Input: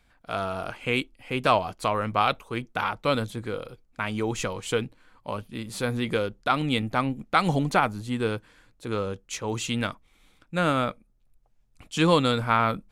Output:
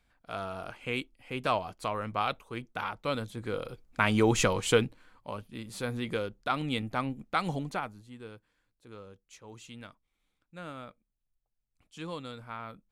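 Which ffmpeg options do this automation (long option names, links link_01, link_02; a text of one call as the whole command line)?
ffmpeg -i in.wav -af "volume=4dB,afade=type=in:start_time=3.31:duration=0.7:silence=0.266073,afade=type=out:start_time=4.57:duration=0.73:silence=0.298538,afade=type=out:start_time=7.24:duration=0.84:silence=0.237137" out.wav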